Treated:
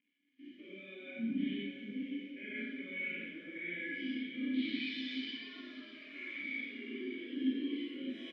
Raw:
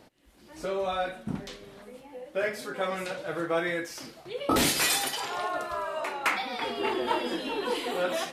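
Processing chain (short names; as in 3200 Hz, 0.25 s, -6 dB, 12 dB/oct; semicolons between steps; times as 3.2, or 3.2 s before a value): stepped spectrum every 0.2 s; reverse; compressor 10:1, threshold -41 dBFS, peak gain reduction 17.5 dB; reverse; low-pass sweep 2900 Hz -> 9900 Hz, 3.63–7.15; bit-crush 9-bit; vowel filter i; small resonant body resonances 1100/1700 Hz, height 11 dB, ringing for 70 ms; on a send: feedback echo 0.596 s, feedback 51%, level -9 dB; on the sum: Schroeder reverb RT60 1.1 s, combs from 31 ms, DRR -5 dB; spectral expander 1.5:1; gain +12.5 dB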